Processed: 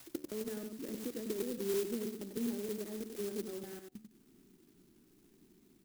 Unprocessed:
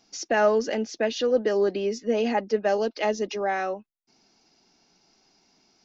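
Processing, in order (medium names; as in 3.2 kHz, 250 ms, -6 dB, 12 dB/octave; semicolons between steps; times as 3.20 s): slices played last to first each 158 ms, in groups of 2; compression 4:1, threshold -39 dBFS, peak gain reduction 19 dB; de-hum 73.96 Hz, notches 11; resampled via 11.025 kHz; FFT filter 370 Hz 0 dB, 710 Hz -27 dB, 2 kHz -13 dB; echo from a far wall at 16 m, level -7 dB; sampling jitter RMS 0.12 ms; trim +5.5 dB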